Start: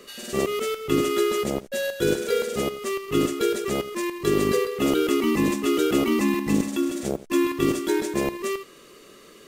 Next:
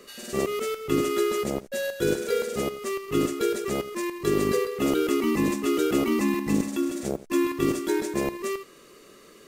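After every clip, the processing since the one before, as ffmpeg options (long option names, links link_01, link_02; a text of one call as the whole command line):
ffmpeg -i in.wav -af "equalizer=frequency=3200:width_type=o:width=0.49:gain=-3.5,volume=-2dB" out.wav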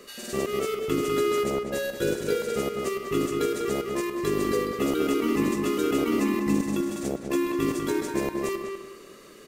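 ffmpeg -i in.wav -filter_complex "[0:a]asplit=2[link_01][link_02];[link_02]acompressor=threshold=-31dB:ratio=6,volume=-0.5dB[link_03];[link_01][link_03]amix=inputs=2:normalize=0,asplit=2[link_04][link_05];[link_05]adelay=198,lowpass=frequency=2700:poles=1,volume=-4dB,asplit=2[link_06][link_07];[link_07]adelay=198,lowpass=frequency=2700:poles=1,volume=0.32,asplit=2[link_08][link_09];[link_09]adelay=198,lowpass=frequency=2700:poles=1,volume=0.32,asplit=2[link_10][link_11];[link_11]adelay=198,lowpass=frequency=2700:poles=1,volume=0.32[link_12];[link_04][link_06][link_08][link_10][link_12]amix=inputs=5:normalize=0,volume=-4.5dB" out.wav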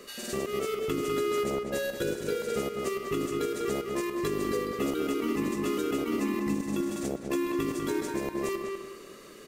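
ffmpeg -i in.wav -af "alimiter=limit=-19.5dB:level=0:latency=1:release=396" out.wav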